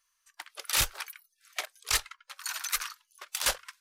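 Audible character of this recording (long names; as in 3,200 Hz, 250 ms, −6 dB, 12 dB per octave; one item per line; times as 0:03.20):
background noise floor −77 dBFS
spectral slope 0.0 dB per octave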